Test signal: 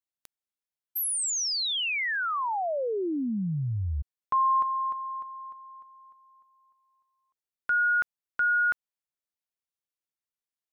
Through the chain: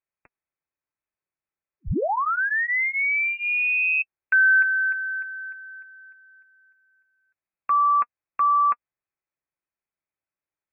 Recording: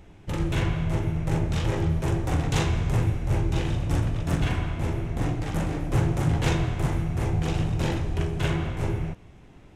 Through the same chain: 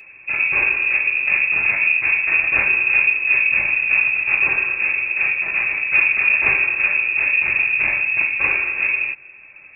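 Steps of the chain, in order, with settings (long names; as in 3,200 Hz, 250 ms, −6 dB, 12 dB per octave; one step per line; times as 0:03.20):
voice inversion scrambler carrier 2,600 Hz
notch comb filter 240 Hz
level +6.5 dB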